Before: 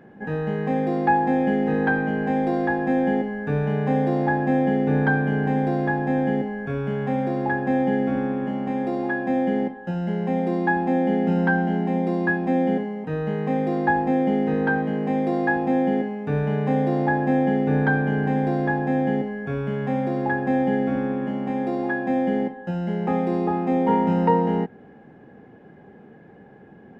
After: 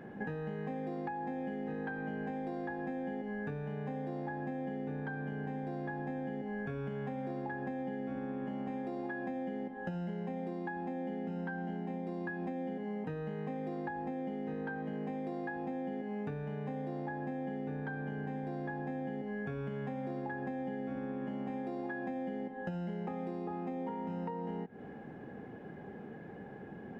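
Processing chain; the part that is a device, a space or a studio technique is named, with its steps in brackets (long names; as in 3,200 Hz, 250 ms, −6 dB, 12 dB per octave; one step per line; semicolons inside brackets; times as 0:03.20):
serial compression, peaks first (downward compressor, threshold −29 dBFS, peak gain reduction 14.5 dB; downward compressor, threshold −36 dBFS, peak gain reduction 9.5 dB)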